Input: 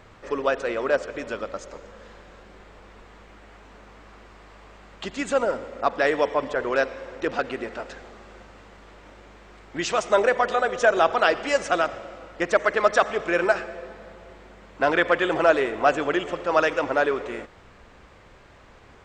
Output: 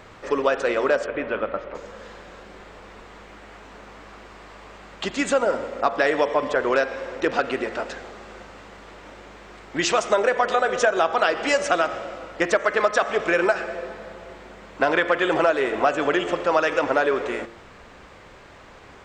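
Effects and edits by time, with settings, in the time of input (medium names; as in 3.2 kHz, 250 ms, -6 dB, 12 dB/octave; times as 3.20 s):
1.06–1.75 s: low-pass 2.9 kHz 24 dB/octave
whole clip: bass shelf 120 Hz -7 dB; de-hum 115.1 Hz, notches 30; compression 5:1, threshold -22 dBFS; trim +6 dB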